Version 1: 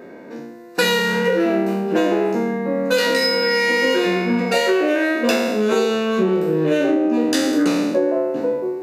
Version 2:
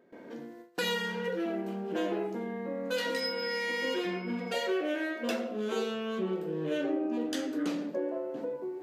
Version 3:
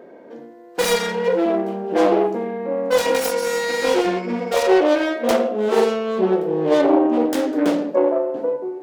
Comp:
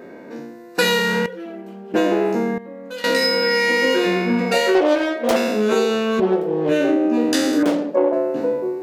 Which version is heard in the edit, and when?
1
1.26–1.94 from 2
2.58–3.04 from 2
4.75–5.36 from 3
6.2–6.69 from 3
7.63–8.13 from 3

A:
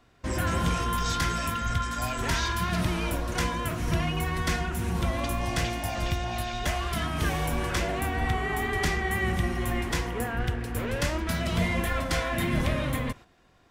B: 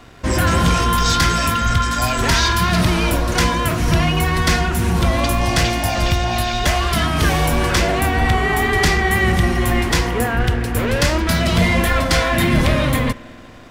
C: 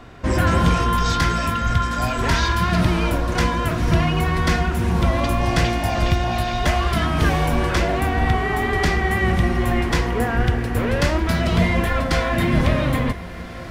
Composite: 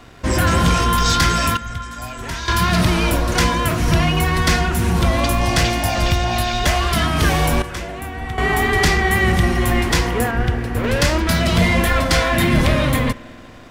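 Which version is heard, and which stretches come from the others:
B
1.57–2.48 from A
7.62–8.38 from A
10.31–10.84 from C

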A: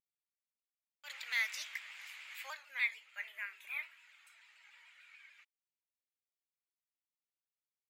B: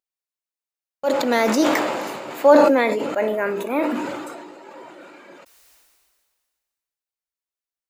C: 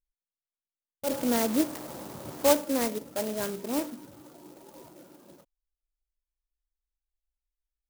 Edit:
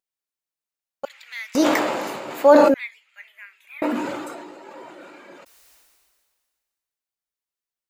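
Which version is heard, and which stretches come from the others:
B
1.05–1.55 from A
2.74–3.82 from A
not used: C

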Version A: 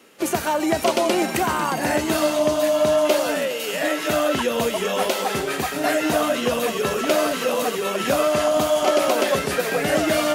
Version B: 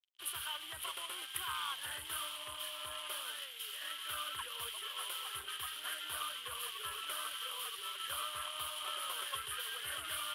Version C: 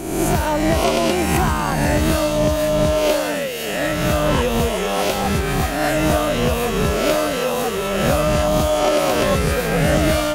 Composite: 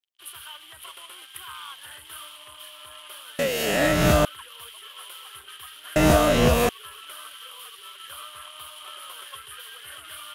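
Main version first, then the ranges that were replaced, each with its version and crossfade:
B
3.39–4.25 from C
5.96–6.69 from C
not used: A

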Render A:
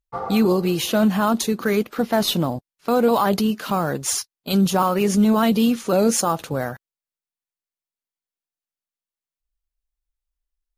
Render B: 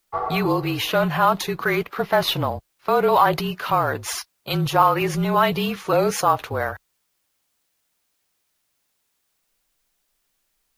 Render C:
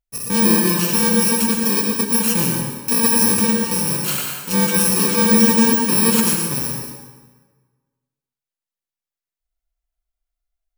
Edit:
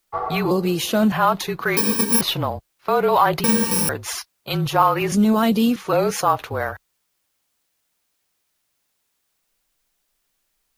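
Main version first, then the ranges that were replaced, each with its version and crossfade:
B
0.51–1.12 from A
1.77–2.21 from C
3.44–3.89 from C
5.12–5.76 from A

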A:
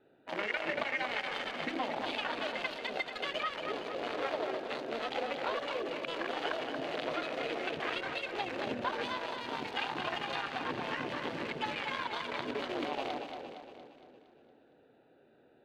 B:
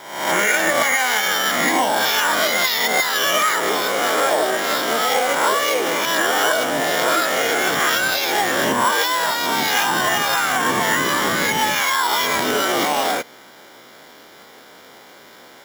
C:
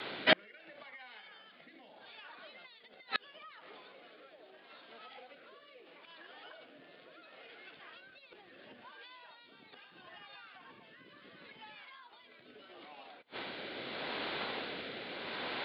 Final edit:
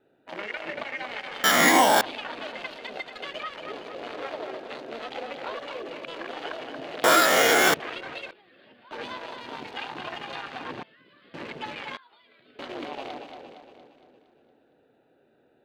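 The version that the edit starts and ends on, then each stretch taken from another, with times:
A
1.44–2.01 from B
7.04–7.74 from B
8.31–8.91 from C
10.83–11.34 from C
11.97–12.59 from C

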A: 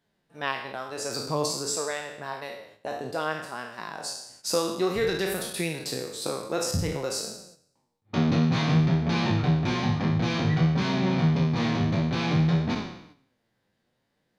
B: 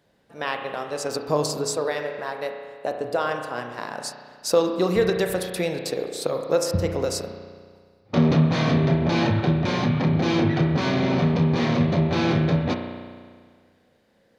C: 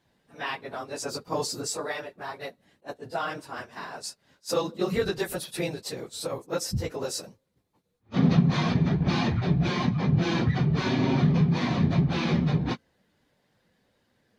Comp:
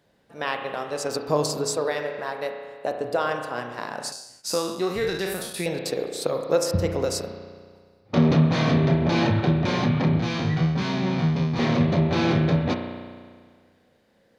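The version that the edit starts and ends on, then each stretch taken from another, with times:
B
4.12–5.66 from A
10.19–11.59 from A
not used: C

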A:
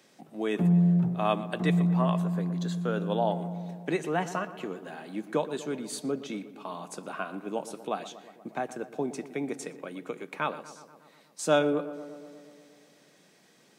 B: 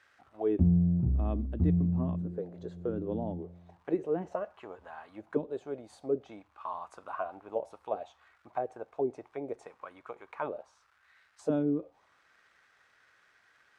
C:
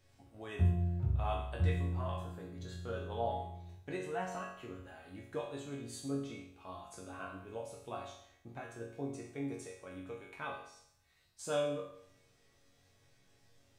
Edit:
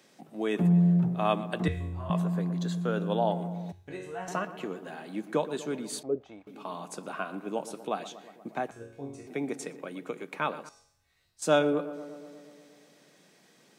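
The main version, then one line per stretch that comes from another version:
A
1.68–2.1 from C
3.72–4.28 from C
6.03–6.47 from B
8.71–9.27 from C
10.69–11.42 from C

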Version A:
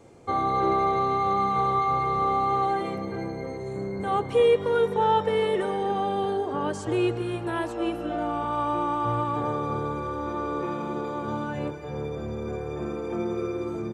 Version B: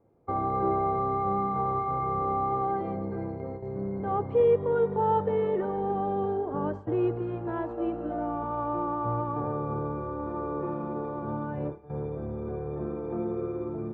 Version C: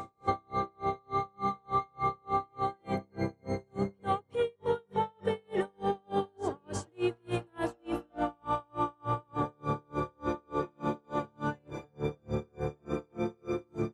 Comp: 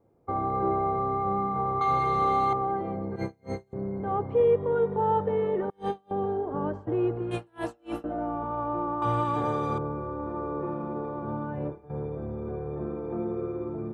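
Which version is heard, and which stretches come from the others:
B
1.81–2.53 from A
3.16–3.73 from C
5.7–6.11 from C
7.31–8.04 from C
9.02–9.78 from A

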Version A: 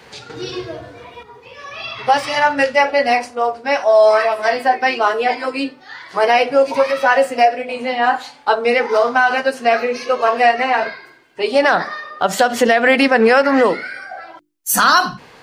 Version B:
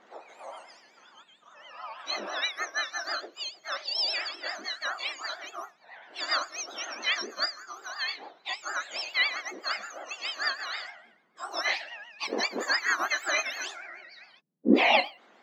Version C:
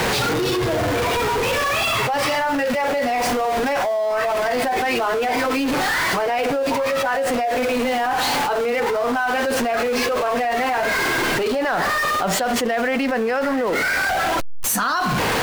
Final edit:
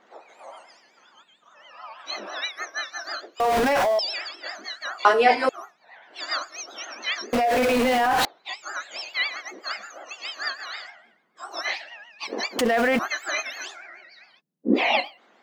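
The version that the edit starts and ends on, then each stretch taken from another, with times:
B
3.4–3.99 from C
5.05–5.49 from A
7.33–8.25 from C
12.59–12.99 from C

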